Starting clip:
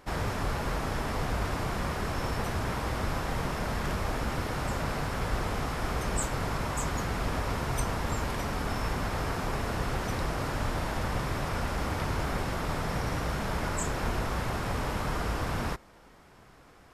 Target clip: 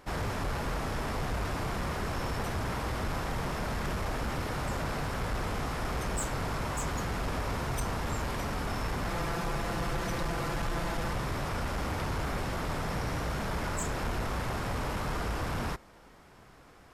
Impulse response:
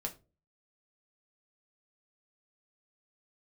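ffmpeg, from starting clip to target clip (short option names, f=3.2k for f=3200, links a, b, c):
-filter_complex "[0:a]asettb=1/sr,asplit=3[a][b][c];[a]atrim=end=9.074[d];[b]atrim=start=9.07:end=11.13,asetpts=PTS-STARTPTS,afade=t=in:d=0.004:c=qsin,afade=t=out:st=2.056:d=0.004:c=qsin,aecho=1:1:5.9:0.62,atrim=end_sample=90846[e];[c]atrim=start=11.126[f];[d][e]acrossfade=d=0.004:c1=hsin:c2=qsin[g];[g][f]acrossfade=d=0.004:c1=qsin:c2=hsin,asoftclip=type=tanh:threshold=-25.5dB"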